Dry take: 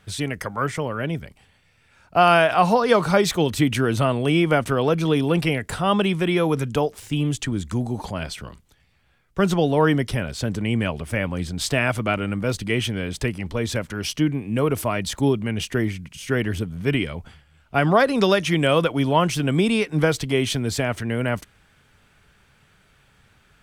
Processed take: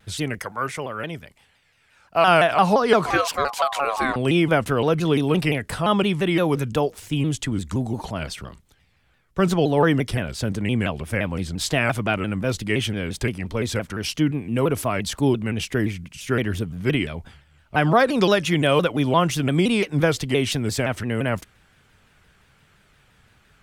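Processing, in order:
0:00.39–0:02.28: low-shelf EQ 390 Hz −9 dB
0:03.06–0:04.16: ring modulation 920 Hz
pitch modulation by a square or saw wave saw down 5.8 Hz, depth 160 cents

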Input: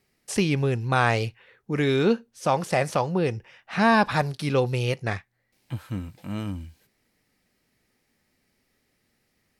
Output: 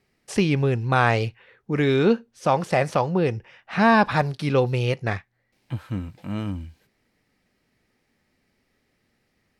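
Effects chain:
high-shelf EQ 6,300 Hz −11 dB
level +2.5 dB

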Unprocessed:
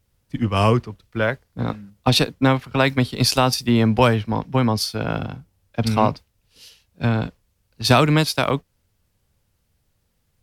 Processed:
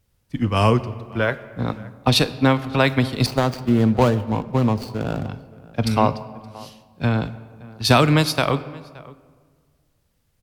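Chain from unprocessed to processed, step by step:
0:03.26–0:05.29: running median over 25 samples
slap from a distant wall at 98 metres, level −21 dB
convolution reverb RT60 1.7 s, pre-delay 13 ms, DRR 14 dB

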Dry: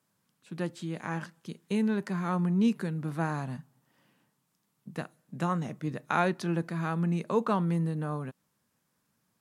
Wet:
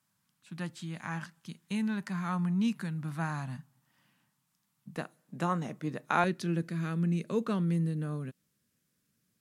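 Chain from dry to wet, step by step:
parametric band 430 Hz −14.5 dB 1.1 octaves, from 0:04.96 70 Hz, from 0:06.24 870 Hz

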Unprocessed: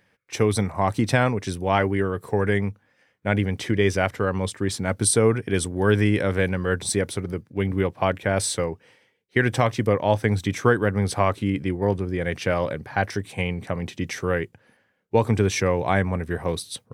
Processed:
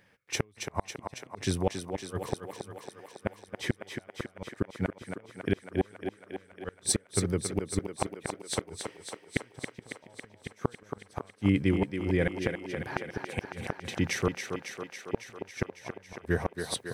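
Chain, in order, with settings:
gate with flip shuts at −13 dBFS, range −39 dB
on a send: feedback echo with a high-pass in the loop 276 ms, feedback 72%, high-pass 220 Hz, level −6 dB

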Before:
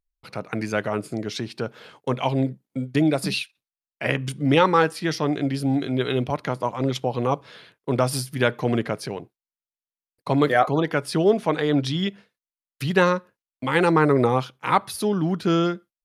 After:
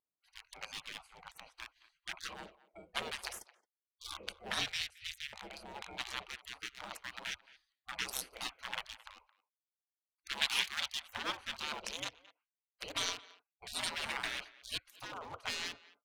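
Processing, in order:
adaptive Wiener filter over 25 samples
gate on every frequency bin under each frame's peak −30 dB weak
0:04.68–0:05.33: elliptic band-stop filter 120–1,900 Hz, stop band 40 dB
0:10.32–0:11.05: tilt shelving filter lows −6 dB, about 1,300 Hz
far-end echo of a speakerphone 220 ms, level −19 dB
level +5 dB

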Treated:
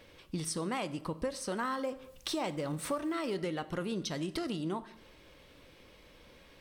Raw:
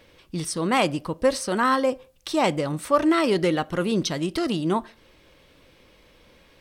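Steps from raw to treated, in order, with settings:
0:01.59–0:03.36: mu-law and A-law mismatch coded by mu
downward compressor, threshold −30 dBFS, peak gain reduction 15.5 dB
dense smooth reverb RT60 0.82 s, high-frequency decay 0.8×, DRR 13.5 dB
level −2.5 dB

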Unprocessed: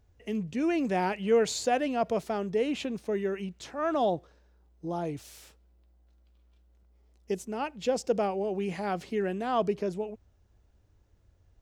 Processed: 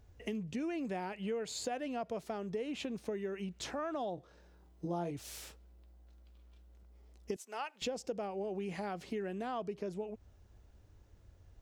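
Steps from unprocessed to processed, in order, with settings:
0:00.74–0:01.72: notch filter 5,800 Hz, Q 8.7
0:07.36–0:07.82: high-pass filter 880 Hz 12 dB per octave
downward compressor 6 to 1, threshold −40 dBFS, peak gain reduction 19 dB
0:04.15–0:05.11: double-tracking delay 23 ms −5 dB
level +3.5 dB

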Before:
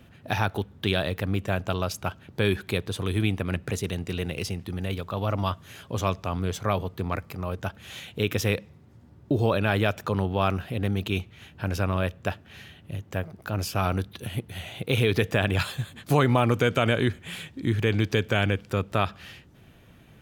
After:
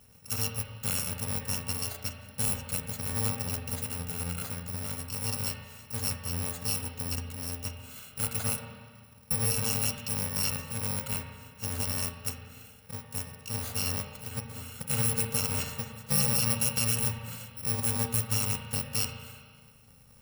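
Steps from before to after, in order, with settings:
samples in bit-reversed order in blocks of 128 samples
tuned comb filter 940 Hz, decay 0.3 s, mix 50%
spring reverb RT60 1.7 s, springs 35/46 ms, chirp 40 ms, DRR 4 dB

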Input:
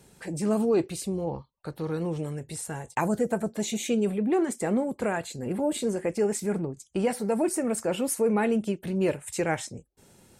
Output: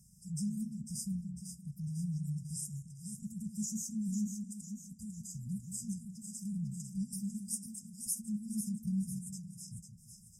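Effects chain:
parametric band 790 Hz +11 dB 0.76 octaves
brickwall limiter −18.5 dBFS, peak gain reduction 10 dB
square-wave tremolo 0.62 Hz, depth 60%, duty 75%
linear-phase brick-wall band-stop 220–4,800 Hz
echo with a time of its own for lows and highs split 370 Hz, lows 172 ms, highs 499 ms, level −7.5 dB
level −4 dB

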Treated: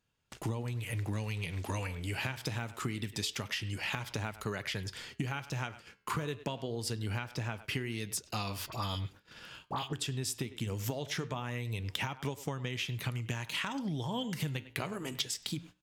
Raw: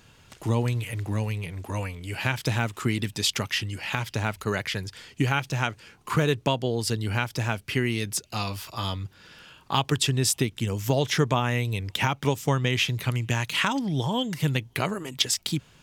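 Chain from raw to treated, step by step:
0:01.13–0:01.87: parametric band 4,200 Hz +7.5 dB 2 octaves
far-end echo of a speakerphone 100 ms, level −18 dB
downward compressor 12 to 1, threshold −32 dBFS, peak gain reduction 16 dB
0:07.19–0:07.62: parametric band 12,000 Hz −6.5 dB 1.5 octaves
0:08.66–0:09.93: all-pass dispersion highs, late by 64 ms, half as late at 1,300 Hz
noise gate −49 dBFS, range −26 dB
flanger 0.24 Hz, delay 3.8 ms, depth 10 ms, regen −85%
level +4.5 dB

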